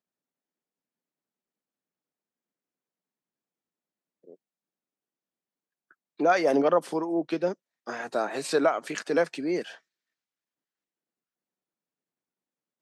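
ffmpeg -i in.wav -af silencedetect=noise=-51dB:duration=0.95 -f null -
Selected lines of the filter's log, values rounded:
silence_start: 0.00
silence_end: 4.24 | silence_duration: 4.24
silence_start: 4.35
silence_end: 5.91 | silence_duration: 1.56
silence_start: 9.78
silence_end: 12.82 | silence_duration: 3.03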